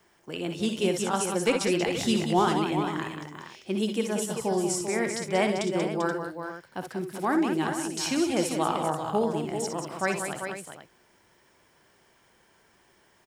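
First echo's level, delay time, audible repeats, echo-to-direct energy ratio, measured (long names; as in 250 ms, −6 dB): −10.0 dB, 57 ms, 4, −2.0 dB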